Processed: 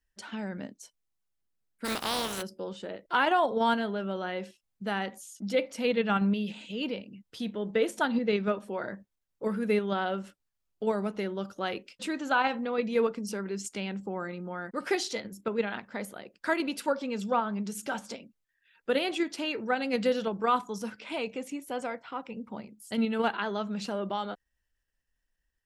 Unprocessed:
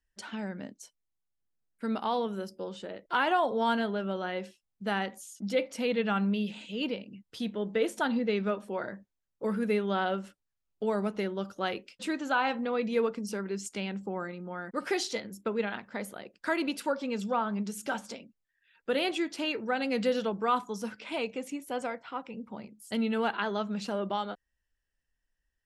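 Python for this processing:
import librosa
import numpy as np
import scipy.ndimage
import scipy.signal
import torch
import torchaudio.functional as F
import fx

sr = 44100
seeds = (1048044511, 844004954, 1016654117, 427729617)

p1 = fx.spec_flatten(x, sr, power=0.37, at=(1.84, 2.41), fade=0.02)
p2 = fx.level_steps(p1, sr, step_db=14)
p3 = p1 + (p2 * 10.0 ** (-1.0 / 20.0))
y = p3 * 10.0 ** (-2.5 / 20.0)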